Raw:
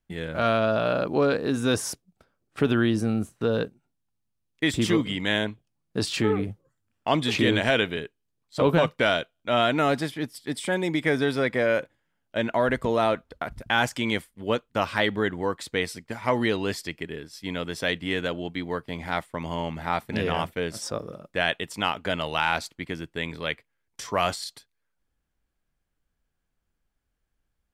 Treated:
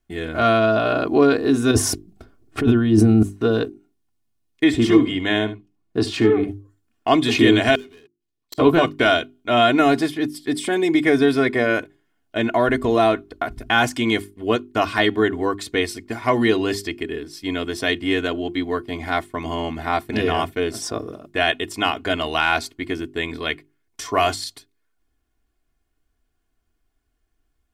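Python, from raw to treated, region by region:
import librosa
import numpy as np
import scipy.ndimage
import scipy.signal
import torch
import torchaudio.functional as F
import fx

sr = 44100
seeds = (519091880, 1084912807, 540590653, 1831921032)

y = fx.chain(x, sr, fx.over_compress(threshold_db=-28.0, ratio=-1.0),
    fx.low_shelf(hz=370.0, db=10.5), at=(1.71, 3.23))
y = fx.chain(y, sr, fx.high_shelf(hz=4600.0, db=-10.0),
    fx.echo_single(ms=74, db=-15.5), at=(4.64, 6.48))
y = fx.chain(y, sr, fx.peak_eq(hz=3500.0, db=5.0, octaves=1.8),
    fx.leveller(passes=5),
    fx.gate_flip(shuts_db=-21.0, range_db=-40), at=(7.75, 8.58))
y = fx.peak_eq(y, sr, hz=210.0, db=6.0, octaves=1.4)
y = fx.hum_notches(y, sr, base_hz=50, count=8)
y = y + 0.76 * np.pad(y, (int(2.8 * sr / 1000.0), 0))[:len(y)]
y = y * 10.0 ** (3.0 / 20.0)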